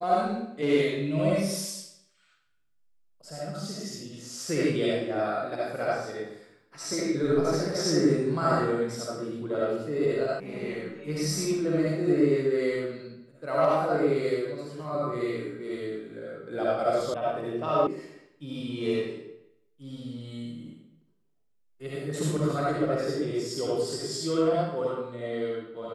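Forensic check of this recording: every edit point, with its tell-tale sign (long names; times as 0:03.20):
0:10.40: cut off before it has died away
0:17.14: cut off before it has died away
0:17.87: cut off before it has died away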